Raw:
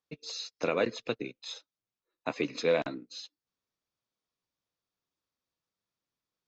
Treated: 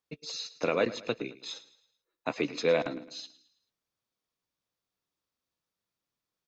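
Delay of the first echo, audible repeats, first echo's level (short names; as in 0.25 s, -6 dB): 0.109 s, 3, -17.0 dB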